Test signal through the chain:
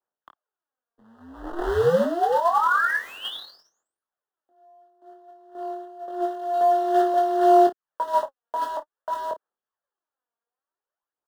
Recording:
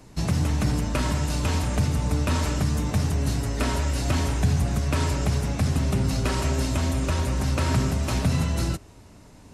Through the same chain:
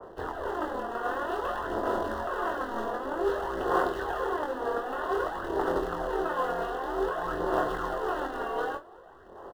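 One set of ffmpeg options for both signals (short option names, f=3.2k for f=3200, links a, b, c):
-filter_complex "[0:a]highpass=f=240:t=q:w=0.5412,highpass=f=240:t=q:w=1.307,lowpass=f=3.3k:t=q:w=0.5176,lowpass=f=3.3k:t=q:w=0.7071,lowpass=f=3.3k:t=q:w=1.932,afreqshift=-53,asplit=2[a][b];[b]acompressor=threshold=-27dB:ratio=6,volume=2.5dB[c];[a][c]amix=inputs=2:normalize=0,alimiter=limit=-17dB:level=0:latency=1:release=253,aeval=exprs='val(0)*sin(2*PI*170*n/s)':c=same,aphaser=in_gain=1:out_gain=1:delay=4.3:decay=0.63:speed=0.53:type=sinusoidal,acrusher=bits=2:mode=log:mix=0:aa=0.000001,asuperstop=centerf=2300:order=4:qfactor=1.7,acrossover=split=310 2200:gain=0.158 1 0.0794[d][e][f];[d][e][f]amix=inputs=3:normalize=0,aecho=1:1:23|53:0.596|0.168,adynamicequalizer=threshold=0.0224:dfrequency=1600:dqfactor=0.7:tfrequency=1600:tqfactor=0.7:attack=5:release=100:ratio=0.375:range=2.5:mode=boostabove:tftype=highshelf,volume=-1dB"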